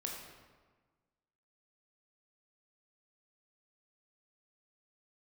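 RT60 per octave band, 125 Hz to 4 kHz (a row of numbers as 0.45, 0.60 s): 1.6, 1.6, 1.4, 1.4, 1.2, 0.95 s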